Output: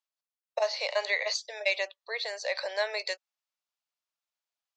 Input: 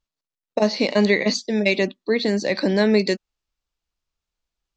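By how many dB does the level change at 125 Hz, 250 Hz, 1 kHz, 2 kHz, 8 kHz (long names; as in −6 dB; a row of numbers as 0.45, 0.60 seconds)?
below −40 dB, below −40 dB, −6.0 dB, −6.0 dB, can't be measured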